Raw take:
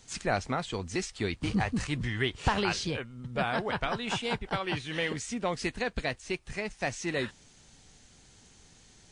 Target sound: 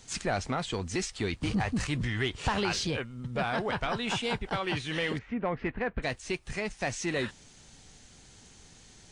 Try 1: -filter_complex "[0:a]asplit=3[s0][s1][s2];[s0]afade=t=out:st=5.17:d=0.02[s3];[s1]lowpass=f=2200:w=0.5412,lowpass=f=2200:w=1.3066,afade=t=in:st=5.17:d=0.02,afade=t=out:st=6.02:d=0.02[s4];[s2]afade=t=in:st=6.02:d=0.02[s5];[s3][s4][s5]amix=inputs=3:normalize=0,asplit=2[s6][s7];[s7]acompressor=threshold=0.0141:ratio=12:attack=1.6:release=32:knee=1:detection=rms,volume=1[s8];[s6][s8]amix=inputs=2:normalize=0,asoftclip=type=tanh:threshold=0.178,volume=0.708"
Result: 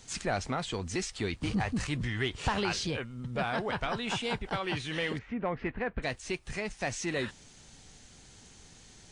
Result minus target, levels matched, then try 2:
compression: peak gain reduction +6.5 dB
-filter_complex "[0:a]asplit=3[s0][s1][s2];[s0]afade=t=out:st=5.17:d=0.02[s3];[s1]lowpass=f=2200:w=0.5412,lowpass=f=2200:w=1.3066,afade=t=in:st=5.17:d=0.02,afade=t=out:st=6.02:d=0.02[s4];[s2]afade=t=in:st=6.02:d=0.02[s5];[s3][s4][s5]amix=inputs=3:normalize=0,asplit=2[s6][s7];[s7]acompressor=threshold=0.0316:ratio=12:attack=1.6:release=32:knee=1:detection=rms,volume=1[s8];[s6][s8]amix=inputs=2:normalize=0,asoftclip=type=tanh:threshold=0.178,volume=0.708"

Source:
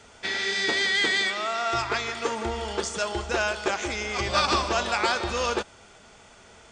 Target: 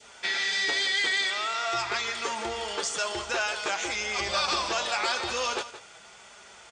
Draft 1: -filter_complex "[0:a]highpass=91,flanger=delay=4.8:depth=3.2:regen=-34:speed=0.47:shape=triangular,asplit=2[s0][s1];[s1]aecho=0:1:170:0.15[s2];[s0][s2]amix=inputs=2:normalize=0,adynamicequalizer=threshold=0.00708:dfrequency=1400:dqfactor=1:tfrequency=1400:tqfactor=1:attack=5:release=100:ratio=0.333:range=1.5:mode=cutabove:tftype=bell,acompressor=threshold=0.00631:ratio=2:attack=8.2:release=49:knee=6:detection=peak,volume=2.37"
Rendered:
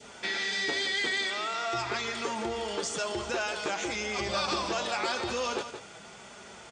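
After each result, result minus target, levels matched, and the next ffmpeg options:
250 Hz band +8.0 dB; compression: peak gain reduction +5 dB
-filter_complex "[0:a]highpass=91,equalizer=f=190:t=o:w=2.8:g=-12,flanger=delay=4.8:depth=3.2:regen=-34:speed=0.47:shape=triangular,asplit=2[s0][s1];[s1]aecho=0:1:170:0.15[s2];[s0][s2]amix=inputs=2:normalize=0,adynamicequalizer=threshold=0.00708:dfrequency=1400:dqfactor=1:tfrequency=1400:tqfactor=1:attack=5:release=100:ratio=0.333:range=1.5:mode=cutabove:tftype=bell,acompressor=threshold=0.00631:ratio=2:attack=8.2:release=49:knee=6:detection=peak,volume=2.37"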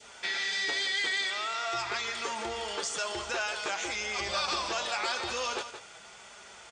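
compression: peak gain reduction +4 dB
-filter_complex "[0:a]highpass=91,equalizer=f=190:t=o:w=2.8:g=-12,flanger=delay=4.8:depth=3.2:regen=-34:speed=0.47:shape=triangular,asplit=2[s0][s1];[s1]aecho=0:1:170:0.15[s2];[s0][s2]amix=inputs=2:normalize=0,adynamicequalizer=threshold=0.00708:dfrequency=1400:dqfactor=1:tfrequency=1400:tqfactor=1:attack=5:release=100:ratio=0.333:range=1.5:mode=cutabove:tftype=bell,acompressor=threshold=0.0158:ratio=2:attack=8.2:release=49:knee=6:detection=peak,volume=2.37"

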